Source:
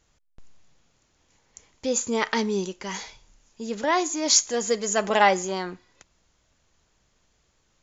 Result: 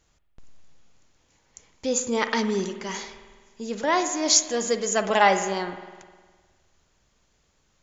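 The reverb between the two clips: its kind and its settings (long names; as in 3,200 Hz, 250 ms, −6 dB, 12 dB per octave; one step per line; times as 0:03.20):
spring reverb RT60 1.5 s, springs 51 ms, chirp 75 ms, DRR 9 dB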